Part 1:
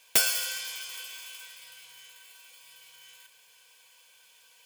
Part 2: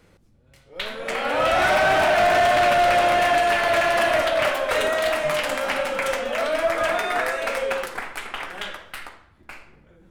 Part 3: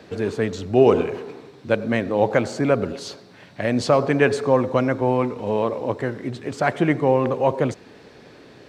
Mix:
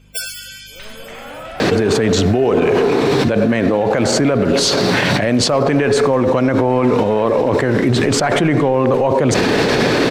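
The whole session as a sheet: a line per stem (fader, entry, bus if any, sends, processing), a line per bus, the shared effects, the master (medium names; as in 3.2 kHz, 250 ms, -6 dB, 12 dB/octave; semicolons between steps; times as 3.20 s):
+2.5 dB, 0.00 s, no send, loudest bins only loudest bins 64
-4.5 dB, 0.00 s, no send, tone controls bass +10 dB, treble -5 dB; peak limiter -19.5 dBFS, peak gain reduction 10 dB; hum 50 Hz, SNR 15 dB
+0.5 dB, 1.60 s, no send, level flattener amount 100%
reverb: none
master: peaking EQ 68 Hz -6 dB 0.77 oct; peak limiter -6 dBFS, peak gain reduction 9.5 dB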